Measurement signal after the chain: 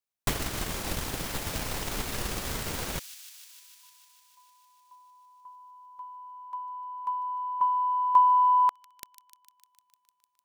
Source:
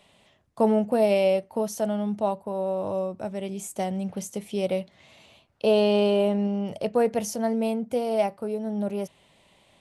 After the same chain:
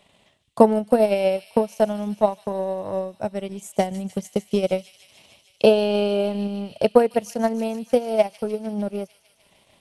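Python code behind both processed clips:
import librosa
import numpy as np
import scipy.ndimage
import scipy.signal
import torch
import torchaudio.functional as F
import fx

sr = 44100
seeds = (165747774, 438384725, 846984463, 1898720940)

y = fx.transient(x, sr, attack_db=11, sustain_db=-11)
y = fx.echo_wet_highpass(y, sr, ms=151, feedback_pct=78, hz=3500.0, wet_db=-9.5)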